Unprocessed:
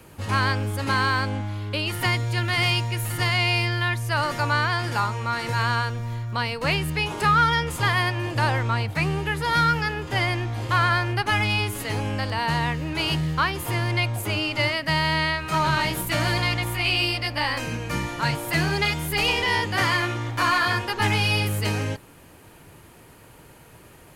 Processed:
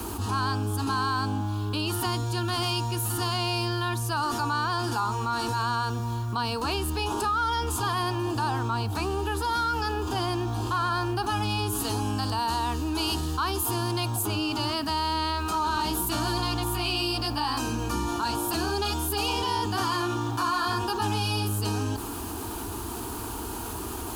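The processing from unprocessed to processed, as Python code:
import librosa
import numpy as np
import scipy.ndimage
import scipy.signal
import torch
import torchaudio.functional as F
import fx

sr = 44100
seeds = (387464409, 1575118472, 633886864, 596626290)

y = scipy.signal.sosfilt(scipy.signal.butter(2, 42.0, 'highpass', fs=sr, output='sos'), x)
y = fx.low_shelf(y, sr, hz=150.0, db=4.5)
y = fx.fixed_phaser(y, sr, hz=550.0, stages=6)
y = fx.high_shelf(y, sr, hz=4900.0, db=6.5, at=(11.84, 14.23))
y = fx.quant_dither(y, sr, seeds[0], bits=10, dither='none')
y = fx.env_flatten(y, sr, amount_pct=70)
y = y * 10.0 ** (-5.5 / 20.0)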